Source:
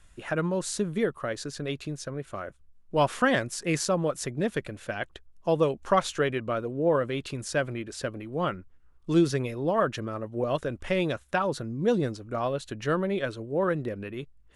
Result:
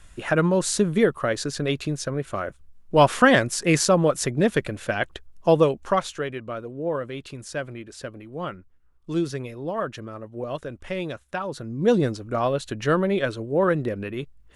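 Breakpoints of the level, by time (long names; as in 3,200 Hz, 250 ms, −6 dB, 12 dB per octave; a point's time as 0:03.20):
0:05.50 +7.5 dB
0:06.21 −3 dB
0:11.49 −3 dB
0:11.90 +5.5 dB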